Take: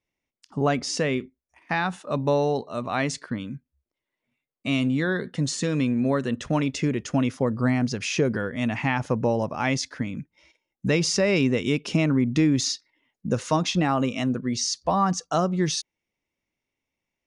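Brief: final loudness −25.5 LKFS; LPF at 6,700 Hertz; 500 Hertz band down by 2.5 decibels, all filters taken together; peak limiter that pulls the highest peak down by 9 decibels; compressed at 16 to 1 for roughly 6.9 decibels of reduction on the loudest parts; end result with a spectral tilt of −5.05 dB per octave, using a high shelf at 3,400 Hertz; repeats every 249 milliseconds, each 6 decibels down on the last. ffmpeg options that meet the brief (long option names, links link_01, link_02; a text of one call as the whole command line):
ffmpeg -i in.wav -af "lowpass=6700,equalizer=frequency=500:width_type=o:gain=-3,highshelf=frequency=3400:gain=-5.5,acompressor=threshold=-24dB:ratio=16,alimiter=limit=-23.5dB:level=0:latency=1,aecho=1:1:249|498|747|996|1245|1494:0.501|0.251|0.125|0.0626|0.0313|0.0157,volume=7dB" out.wav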